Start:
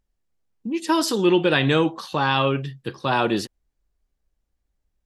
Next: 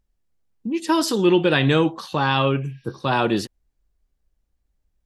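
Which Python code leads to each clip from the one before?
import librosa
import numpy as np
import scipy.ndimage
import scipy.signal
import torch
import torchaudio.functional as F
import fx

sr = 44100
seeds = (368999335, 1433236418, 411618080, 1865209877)

y = fx.spec_repair(x, sr, seeds[0], start_s=2.64, length_s=0.32, low_hz=1600.0, high_hz=5800.0, source='both')
y = fx.low_shelf(y, sr, hz=230.0, db=4.0)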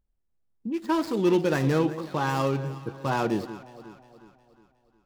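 y = scipy.ndimage.median_filter(x, 15, mode='constant')
y = fx.echo_alternate(y, sr, ms=181, hz=820.0, feedback_pct=67, wet_db=-12.5)
y = y * librosa.db_to_amplitude(-5.0)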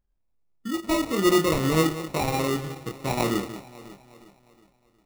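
y = fx.doubler(x, sr, ms=25.0, db=-5.5)
y = fx.sample_hold(y, sr, seeds[1], rate_hz=1600.0, jitter_pct=0)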